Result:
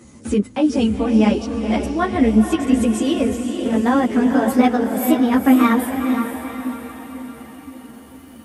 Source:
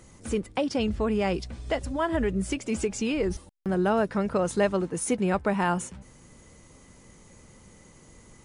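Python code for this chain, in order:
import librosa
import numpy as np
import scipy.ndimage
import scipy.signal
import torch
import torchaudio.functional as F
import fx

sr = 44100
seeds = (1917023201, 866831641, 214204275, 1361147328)

y = fx.pitch_glide(x, sr, semitones=7.0, runs='starting unshifted')
y = scipy.signal.sosfilt(scipy.signal.butter(2, 57.0, 'highpass', fs=sr, output='sos'), y)
y = fx.peak_eq(y, sr, hz=260.0, db=12.5, octaves=0.53)
y = fx.echo_diffused(y, sr, ms=487, feedback_pct=52, wet_db=-6.0)
y = fx.ensemble(y, sr)
y = y * 10.0 ** (8.0 / 20.0)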